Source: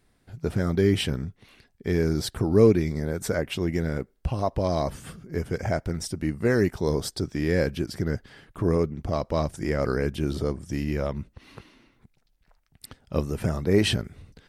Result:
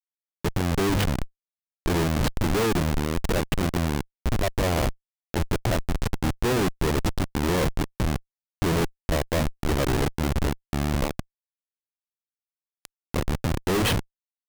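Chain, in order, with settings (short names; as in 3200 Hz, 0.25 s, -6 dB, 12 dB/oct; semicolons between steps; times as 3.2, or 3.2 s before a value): notches 50/100/150/200/250 Hz; Schmitt trigger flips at -24.5 dBFS; gain +5 dB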